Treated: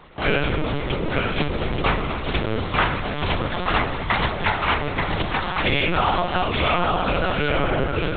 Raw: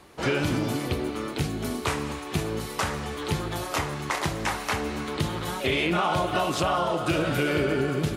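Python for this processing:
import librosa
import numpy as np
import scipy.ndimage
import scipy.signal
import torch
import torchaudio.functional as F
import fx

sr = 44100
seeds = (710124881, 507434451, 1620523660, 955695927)

y = fx.low_shelf(x, sr, hz=260.0, db=-9.0)
y = fx.rider(y, sr, range_db=3, speed_s=2.0)
y = y + 10.0 ** (-4.0 / 20.0) * np.pad(y, (int(883 * sr / 1000.0), 0))[:len(y)]
y = fx.lpc_vocoder(y, sr, seeds[0], excitation='pitch_kept', order=10)
y = F.gain(torch.from_numpy(y), 6.5).numpy()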